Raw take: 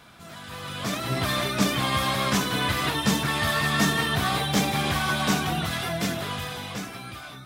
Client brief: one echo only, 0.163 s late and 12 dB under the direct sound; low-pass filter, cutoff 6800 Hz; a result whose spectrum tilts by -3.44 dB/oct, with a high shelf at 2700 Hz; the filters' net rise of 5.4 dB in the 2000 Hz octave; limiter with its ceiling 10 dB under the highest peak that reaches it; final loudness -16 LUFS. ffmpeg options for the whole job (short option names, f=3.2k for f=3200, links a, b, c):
-af "lowpass=6.8k,equalizer=f=2k:t=o:g=5,highshelf=f=2.7k:g=4,alimiter=limit=-17.5dB:level=0:latency=1,aecho=1:1:163:0.251,volume=10dB"